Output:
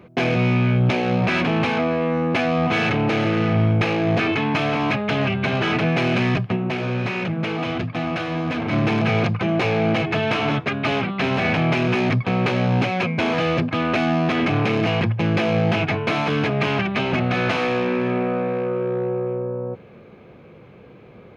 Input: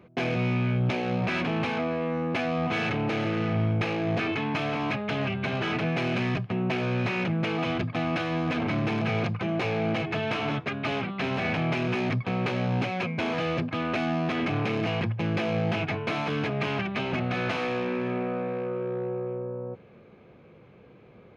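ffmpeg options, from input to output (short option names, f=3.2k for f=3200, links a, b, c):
-filter_complex "[0:a]asplit=3[a][b][c];[a]afade=t=out:st=6.55:d=0.02[d];[b]flanger=delay=1.4:depth=8.9:regen=-71:speed=1.1:shape=triangular,afade=t=in:st=6.55:d=0.02,afade=t=out:st=8.71:d=0.02[e];[c]afade=t=in:st=8.71:d=0.02[f];[d][e][f]amix=inputs=3:normalize=0,volume=7.5dB"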